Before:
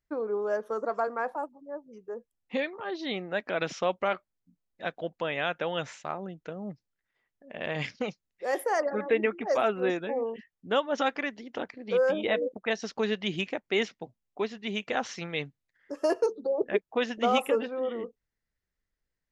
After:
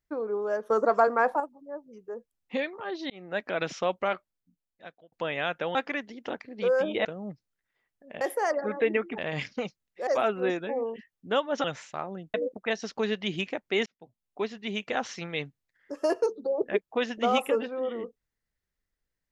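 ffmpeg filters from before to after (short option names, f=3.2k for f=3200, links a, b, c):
-filter_complex "[0:a]asplit=13[a][b][c][d][e][f][g][h][i][j][k][l][m];[a]atrim=end=0.702[n];[b]atrim=start=0.698:end=1.402,asetpts=PTS-STARTPTS,volume=7.5dB[o];[c]atrim=start=1.398:end=3.1,asetpts=PTS-STARTPTS,afade=t=out:st=1.698:d=0.004:c=hsin[p];[d]atrim=start=3.1:end=5.12,asetpts=PTS-STARTPTS,afade=t=in:d=0.27,afade=t=out:st=1.01:d=1.01[q];[e]atrim=start=5.12:end=5.752,asetpts=PTS-STARTPTS,afade=t=in:d=0.004:c=hsin[r];[f]atrim=start=11.038:end=12.342[s];[g]atrim=start=6.448:end=7.612[t];[h]atrim=start=8.498:end=9.472[u];[i]atrim=start=7.608:end=8.502[v];[j]atrim=start=9.468:end=11.042[w];[k]atrim=start=5.748:end=6.452[x];[l]atrim=start=12.338:end=13.86,asetpts=PTS-STARTPTS,afade=t=out:st=1.518:d=0.004:c=hsin[y];[m]atrim=start=13.86,asetpts=PTS-STARTPTS,afade=t=in:d=0.58[z];[n][o]acrossfade=d=0.004:c1=hsin:c2=hsin[aa];[p][q][r]concat=n=3:v=0:a=1[ab];[aa][ab]acrossfade=d=0.004:c1=hsin:c2=hsin[ac];[ac][s]acrossfade=d=0.004:c1=hsin:c2=hsin[ad];[ad][t]acrossfade=d=0.004:c1=hsin:c2=hsin[ae];[ae][u]acrossfade=d=0.004:c1=hsin:c2=hsin[af];[af][v]acrossfade=d=0.004:c1=hsin:c2=hsin[ag];[ag][w]acrossfade=d=0.004:c1=hsin:c2=hsin[ah];[ah][x]acrossfade=d=0.004:c1=hsin:c2=hsin[ai];[y][z]concat=n=2:v=0:a=1[aj];[ai][aj]acrossfade=d=0.004:c1=hsin:c2=hsin"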